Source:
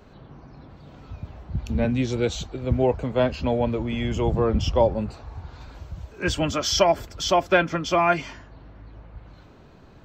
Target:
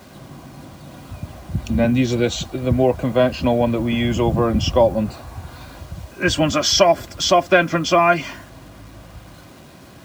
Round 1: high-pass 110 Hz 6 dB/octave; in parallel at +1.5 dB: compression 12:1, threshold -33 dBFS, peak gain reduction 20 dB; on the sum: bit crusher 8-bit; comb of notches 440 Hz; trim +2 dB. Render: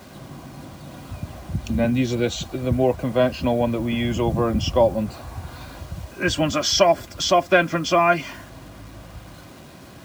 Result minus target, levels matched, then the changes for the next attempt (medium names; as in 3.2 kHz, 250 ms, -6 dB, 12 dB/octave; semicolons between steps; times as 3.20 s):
compression: peak gain reduction +10.5 dB
change: compression 12:1, threshold -21.5 dBFS, peak gain reduction 9.5 dB